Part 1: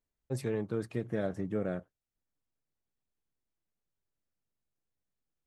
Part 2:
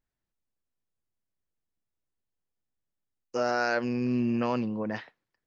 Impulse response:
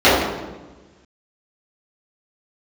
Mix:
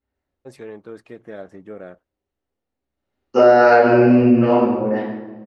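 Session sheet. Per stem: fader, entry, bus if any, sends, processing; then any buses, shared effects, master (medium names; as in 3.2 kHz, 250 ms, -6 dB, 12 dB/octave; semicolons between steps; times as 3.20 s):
+1.5 dB, 0.15 s, no send, peaking EQ 120 Hz -15 dB 1.8 oct
2.88 s -14 dB -> 3.12 s -3.5 dB -> 3.96 s -3.5 dB -> 4.74 s -16 dB, 0.00 s, send -6 dB, none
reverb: on, RT60 1.2 s, pre-delay 3 ms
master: low-pass 3.7 kHz 6 dB/octave; compression 5:1, threshold -8 dBFS, peak gain reduction 7 dB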